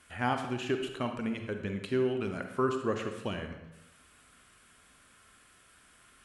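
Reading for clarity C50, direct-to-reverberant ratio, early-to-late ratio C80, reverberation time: 6.5 dB, 5.5 dB, 9.0 dB, 0.95 s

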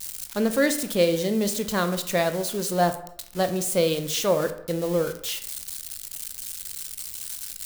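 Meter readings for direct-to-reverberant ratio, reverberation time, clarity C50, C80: 8.5 dB, 0.70 s, 12.0 dB, 15.0 dB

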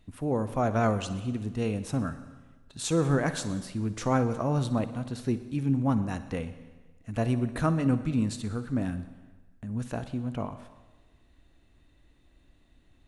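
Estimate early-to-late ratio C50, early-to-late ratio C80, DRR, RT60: 12.0 dB, 14.0 dB, 11.5 dB, 1.3 s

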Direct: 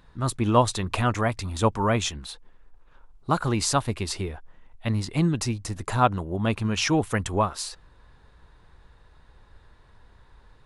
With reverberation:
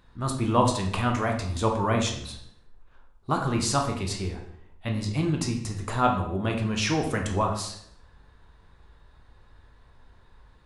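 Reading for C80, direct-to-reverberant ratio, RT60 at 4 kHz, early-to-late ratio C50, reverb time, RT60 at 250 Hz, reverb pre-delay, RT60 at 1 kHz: 10.0 dB, 2.0 dB, 0.55 s, 7.0 dB, 0.70 s, 0.80 s, 13 ms, 0.60 s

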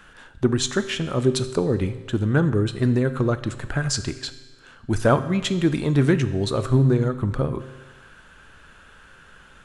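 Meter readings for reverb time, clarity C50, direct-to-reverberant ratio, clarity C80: 1.3 s, 13.5 dB, 11.0 dB, 14.5 dB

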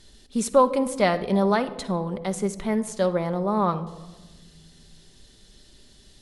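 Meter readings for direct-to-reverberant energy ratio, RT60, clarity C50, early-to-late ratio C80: 9.0 dB, 1.2 s, 14.0 dB, 17.0 dB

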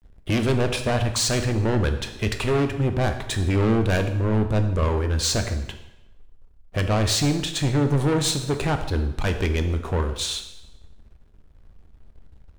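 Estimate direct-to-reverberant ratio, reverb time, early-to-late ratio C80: 6.0 dB, 0.90 s, 11.5 dB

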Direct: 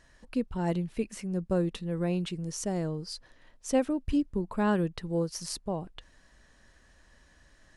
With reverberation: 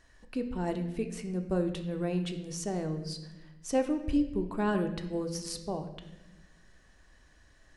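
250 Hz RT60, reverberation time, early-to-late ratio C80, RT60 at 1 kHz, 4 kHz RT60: 1.7 s, 1.1 s, 11.5 dB, 0.90 s, 0.85 s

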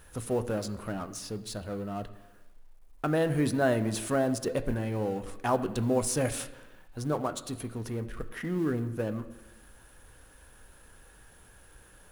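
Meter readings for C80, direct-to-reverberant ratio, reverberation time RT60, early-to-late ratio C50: 15.0 dB, 9.0 dB, 1.1 s, 14.0 dB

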